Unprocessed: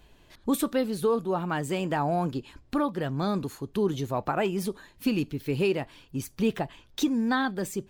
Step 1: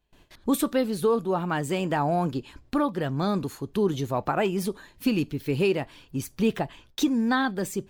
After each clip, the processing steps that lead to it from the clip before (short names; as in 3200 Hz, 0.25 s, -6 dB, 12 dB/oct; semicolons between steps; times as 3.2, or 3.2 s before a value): gate with hold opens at -45 dBFS; gain +2 dB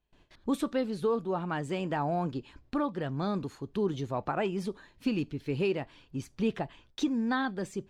air absorption 69 m; gain -5.5 dB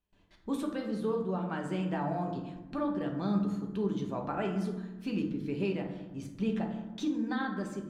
reverb RT60 1.2 s, pre-delay 5 ms, DRR 1.5 dB; gain -6 dB